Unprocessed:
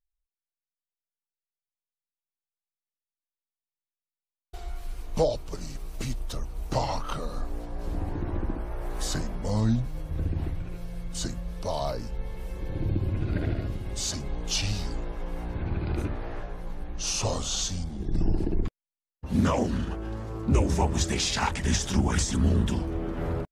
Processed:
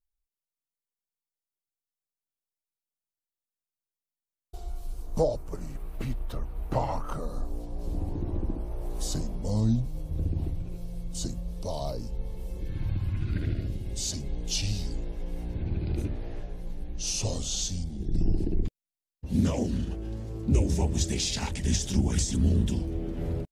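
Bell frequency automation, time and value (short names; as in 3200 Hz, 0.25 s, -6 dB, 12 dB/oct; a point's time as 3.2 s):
bell -15 dB 1.6 oct
4.92 s 1900 Hz
5.94 s 6300 Hz
6.65 s 6300 Hz
7.64 s 1600 Hz
12.57 s 1600 Hz
12.87 s 330 Hz
13.76 s 1200 Hz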